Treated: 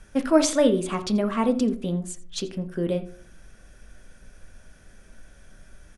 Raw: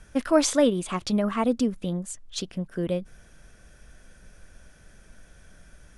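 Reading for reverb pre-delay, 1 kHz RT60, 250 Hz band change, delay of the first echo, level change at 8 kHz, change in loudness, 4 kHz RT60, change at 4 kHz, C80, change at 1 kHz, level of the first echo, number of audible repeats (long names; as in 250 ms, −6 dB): 4 ms, 0.45 s, +2.0 dB, 84 ms, 0.0 dB, +1.5 dB, 0.25 s, 0.0 dB, 16.5 dB, +1.0 dB, −19.5 dB, 1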